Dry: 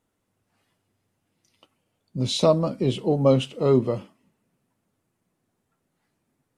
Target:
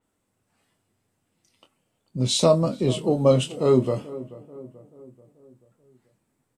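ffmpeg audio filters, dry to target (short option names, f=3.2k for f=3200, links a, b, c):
-filter_complex "[0:a]equalizer=f=8k:w=6.2:g=8.5,asplit=2[a][b];[b]adelay=24,volume=-9dB[c];[a][c]amix=inputs=2:normalize=0,asplit=2[d][e];[e]adelay=435,lowpass=f=1.3k:p=1,volume=-17dB,asplit=2[f][g];[g]adelay=435,lowpass=f=1.3k:p=1,volume=0.53,asplit=2[h][i];[i]adelay=435,lowpass=f=1.3k:p=1,volume=0.53,asplit=2[j][k];[k]adelay=435,lowpass=f=1.3k:p=1,volume=0.53,asplit=2[l][m];[m]adelay=435,lowpass=f=1.3k:p=1,volume=0.53[n];[f][h][j][l][n]amix=inputs=5:normalize=0[o];[d][o]amix=inputs=2:normalize=0,adynamicequalizer=threshold=0.00891:dfrequency=4900:dqfactor=0.7:tfrequency=4900:tqfactor=0.7:attack=5:release=100:ratio=0.375:range=3:mode=boostabove:tftype=highshelf"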